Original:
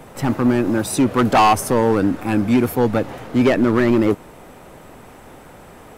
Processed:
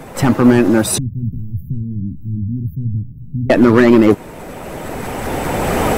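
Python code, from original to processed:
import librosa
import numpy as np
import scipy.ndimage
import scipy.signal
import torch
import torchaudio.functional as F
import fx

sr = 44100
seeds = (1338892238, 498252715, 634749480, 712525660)

y = fx.spec_quant(x, sr, step_db=15)
y = fx.recorder_agc(y, sr, target_db=-12.5, rise_db_per_s=12.0, max_gain_db=30)
y = fx.cheby2_bandstop(y, sr, low_hz=660.0, high_hz=8300.0, order=4, stop_db=70, at=(0.98, 3.5))
y = F.gain(torch.from_numpy(y), 7.0).numpy()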